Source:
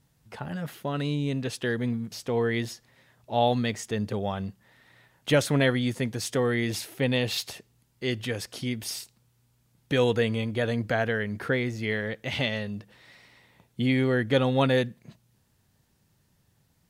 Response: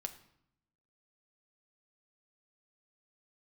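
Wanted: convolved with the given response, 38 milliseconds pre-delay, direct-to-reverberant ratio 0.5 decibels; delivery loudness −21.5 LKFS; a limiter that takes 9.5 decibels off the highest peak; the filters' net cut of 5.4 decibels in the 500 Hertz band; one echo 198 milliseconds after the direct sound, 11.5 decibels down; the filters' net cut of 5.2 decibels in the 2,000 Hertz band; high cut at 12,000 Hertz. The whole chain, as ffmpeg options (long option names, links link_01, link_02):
-filter_complex "[0:a]lowpass=12000,equalizer=frequency=500:width_type=o:gain=-6,equalizer=frequency=2000:width_type=o:gain=-6,alimiter=limit=-24dB:level=0:latency=1,aecho=1:1:198:0.266,asplit=2[link_01][link_02];[1:a]atrim=start_sample=2205,adelay=38[link_03];[link_02][link_03]afir=irnorm=-1:irlink=0,volume=1.5dB[link_04];[link_01][link_04]amix=inputs=2:normalize=0,volume=10dB"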